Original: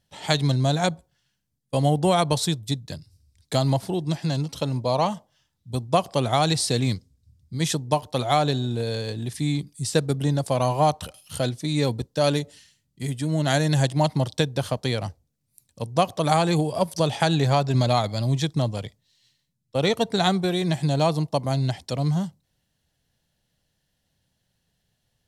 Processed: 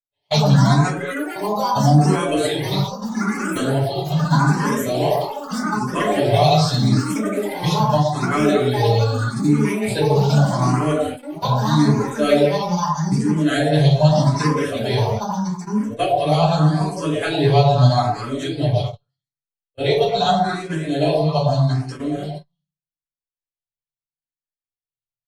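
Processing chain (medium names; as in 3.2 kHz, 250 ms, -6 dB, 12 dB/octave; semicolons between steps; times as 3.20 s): peaking EQ 700 Hz -2.5 dB 2.1 oct; hum notches 60/120/180 Hz; comb 7 ms, depth 86%; repeats whose band climbs or falls 115 ms, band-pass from 570 Hz, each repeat 1.4 oct, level 0 dB; simulated room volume 280 m³, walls furnished, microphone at 5.2 m; gate -16 dBFS, range -39 dB; treble shelf 9.8 kHz -9.5 dB; ever faster or slower copies 115 ms, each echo +6 st, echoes 3, each echo -6 dB; barber-pole phaser +0.81 Hz; trim -5.5 dB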